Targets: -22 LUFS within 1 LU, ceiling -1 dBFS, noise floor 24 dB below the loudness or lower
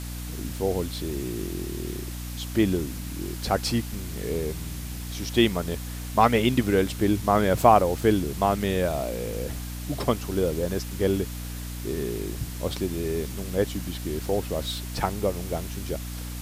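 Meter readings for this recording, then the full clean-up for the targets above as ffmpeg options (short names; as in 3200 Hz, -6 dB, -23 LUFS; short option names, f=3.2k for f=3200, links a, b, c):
hum 60 Hz; harmonics up to 300 Hz; hum level -32 dBFS; noise floor -35 dBFS; noise floor target -51 dBFS; loudness -26.5 LUFS; peak -3.5 dBFS; loudness target -22.0 LUFS
-> -af "bandreject=f=60:t=h:w=4,bandreject=f=120:t=h:w=4,bandreject=f=180:t=h:w=4,bandreject=f=240:t=h:w=4,bandreject=f=300:t=h:w=4"
-af "afftdn=nr=16:nf=-35"
-af "volume=4.5dB,alimiter=limit=-1dB:level=0:latency=1"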